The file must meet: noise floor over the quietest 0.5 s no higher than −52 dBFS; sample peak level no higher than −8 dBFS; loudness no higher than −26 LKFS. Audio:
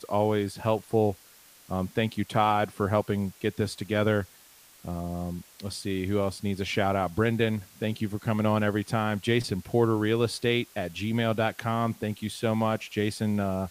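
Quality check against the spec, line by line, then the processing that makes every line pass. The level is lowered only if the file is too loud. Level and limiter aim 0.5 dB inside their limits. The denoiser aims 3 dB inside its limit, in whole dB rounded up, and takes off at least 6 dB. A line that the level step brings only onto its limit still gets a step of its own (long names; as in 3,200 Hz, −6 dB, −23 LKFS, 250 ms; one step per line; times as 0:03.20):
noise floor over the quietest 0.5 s −55 dBFS: in spec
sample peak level −9.0 dBFS: in spec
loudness −28.0 LKFS: in spec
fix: no processing needed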